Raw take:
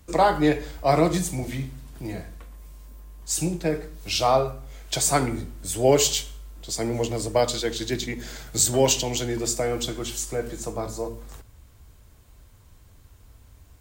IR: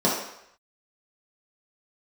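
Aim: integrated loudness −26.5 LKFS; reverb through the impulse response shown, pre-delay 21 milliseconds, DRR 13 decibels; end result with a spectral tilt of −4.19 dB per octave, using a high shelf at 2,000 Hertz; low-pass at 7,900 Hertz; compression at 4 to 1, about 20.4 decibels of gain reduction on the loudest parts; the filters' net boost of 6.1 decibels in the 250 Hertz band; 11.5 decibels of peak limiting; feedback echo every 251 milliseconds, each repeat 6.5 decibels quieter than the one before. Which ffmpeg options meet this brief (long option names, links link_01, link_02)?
-filter_complex "[0:a]lowpass=7900,equalizer=frequency=250:width_type=o:gain=8,highshelf=frequency=2000:gain=3.5,acompressor=threshold=-36dB:ratio=4,alimiter=level_in=7dB:limit=-24dB:level=0:latency=1,volume=-7dB,aecho=1:1:251|502|753|1004|1255|1506:0.473|0.222|0.105|0.0491|0.0231|0.0109,asplit=2[link_01][link_02];[1:a]atrim=start_sample=2205,adelay=21[link_03];[link_02][link_03]afir=irnorm=-1:irlink=0,volume=-29.5dB[link_04];[link_01][link_04]amix=inputs=2:normalize=0,volume=13dB"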